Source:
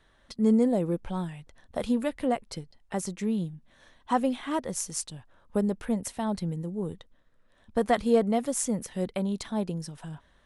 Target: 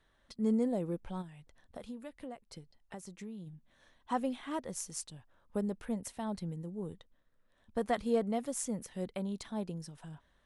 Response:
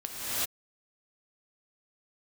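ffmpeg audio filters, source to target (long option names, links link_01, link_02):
-filter_complex "[0:a]asplit=3[link_01][link_02][link_03];[link_01]afade=type=out:start_time=1.21:duration=0.02[link_04];[link_02]acompressor=threshold=-37dB:ratio=3,afade=type=in:start_time=1.21:duration=0.02,afade=type=out:start_time=3.46:duration=0.02[link_05];[link_03]afade=type=in:start_time=3.46:duration=0.02[link_06];[link_04][link_05][link_06]amix=inputs=3:normalize=0,volume=-8dB"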